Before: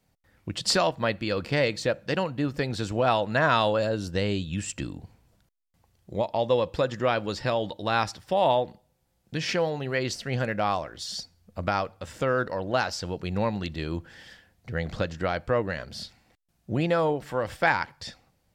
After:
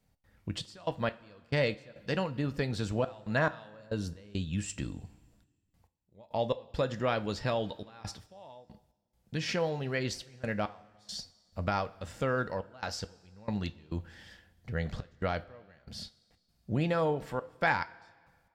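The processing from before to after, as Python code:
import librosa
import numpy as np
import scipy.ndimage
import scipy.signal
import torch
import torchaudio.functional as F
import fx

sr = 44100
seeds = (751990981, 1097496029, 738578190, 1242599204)

y = fx.step_gate(x, sr, bpm=69, pattern='xxx.x..x.xx', floor_db=-24.0, edge_ms=4.5)
y = fx.low_shelf(y, sr, hz=130.0, db=6.5)
y = fx.rev_double_slope(y, sr, seeds[0], early_s=0.23, late_s=1.7, knee_db=-18, drr_db=10.0)
y = F.gain(torch.from_numpy(y), -5.5).numpy()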